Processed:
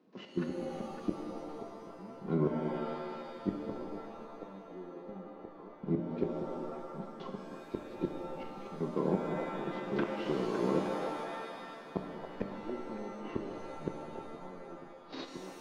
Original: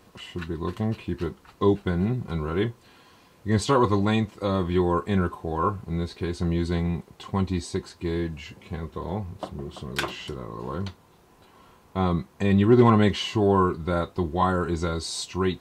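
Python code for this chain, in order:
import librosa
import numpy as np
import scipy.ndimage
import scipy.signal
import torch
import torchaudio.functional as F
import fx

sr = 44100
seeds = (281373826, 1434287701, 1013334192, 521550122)

y = fx.cvsd(x, sr, bps=32000)
y = fx.env_lowpass_down(y, sr, base_hz=880.0, full_db=-21.5)
y = scipy.signal.sosfilt(scipy.signal.butter(4, 160.0, 'highpass', fs=sr, output='sos'), y)
y = fx.high_shelf(y, sr, hz=4400.0, db=-10.0)
y = fx.hpss(y, sr, part='percussive', gain_db=-4)
y = fx.peak_eq(y, sr, hz=290.0, db=14.5, octaves=2.2)
y = fx.gate_flip(y, sr, shuts_db=-12.0, range_db=-28)
y = fx.step_gate(y, sr, bpm=121, pattern='.x.x.xxxxx.', floor_db=-12.0, edge_ms=4.5)
y = fx.echo_stepped(y, sr, ms=279, hz=660.0, octaves=1.4, feedback_pct=70, wet_db=-4)
y = fx.rev_shimmer(y, sr, seeds[0], rt60_s=2.1, semitones=7, shimmer_db=-2, drr_db=4.5)
y = y * librosa.db_to_amplitude(-7.0)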